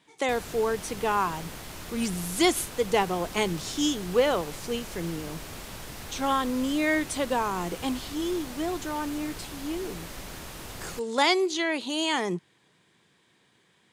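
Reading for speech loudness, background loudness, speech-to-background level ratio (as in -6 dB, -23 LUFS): -28.0 LUFS, -40.0 LUFS, 12.0 dB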